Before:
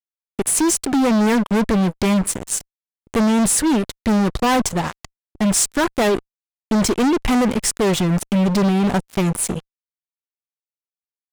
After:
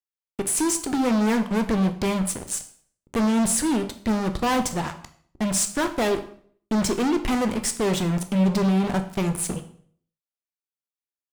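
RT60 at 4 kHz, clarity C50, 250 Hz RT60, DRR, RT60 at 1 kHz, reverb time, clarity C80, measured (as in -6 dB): 0.50 s, 12.5 dB, 0.60 s, 7.5 dB, 0.50 s, 0.55 s, 16.0 dB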